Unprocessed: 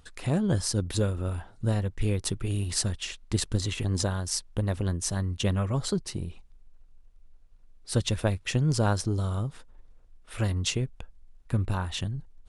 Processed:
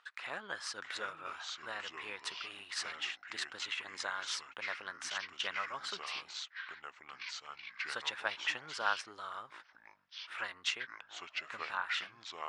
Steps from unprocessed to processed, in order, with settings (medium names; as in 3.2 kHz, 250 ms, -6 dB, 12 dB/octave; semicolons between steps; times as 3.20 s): ever faster or slower copies 591 ms, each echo -5 st, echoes 2, each echo -6 dB; ladder band-pass 1.8 kHz, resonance 30%; trim +11.5 dB